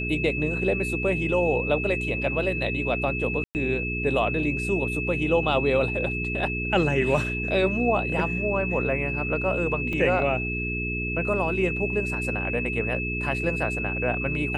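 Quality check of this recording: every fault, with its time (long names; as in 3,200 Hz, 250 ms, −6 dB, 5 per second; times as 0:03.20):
mains hum 60 Hz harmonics 7 −31 dBFS
whistle 2,600 Hz −29 dBFS
0:03.44–0:03.55: drop-out 109 ms
0:09.93: drop-out 2.8 ms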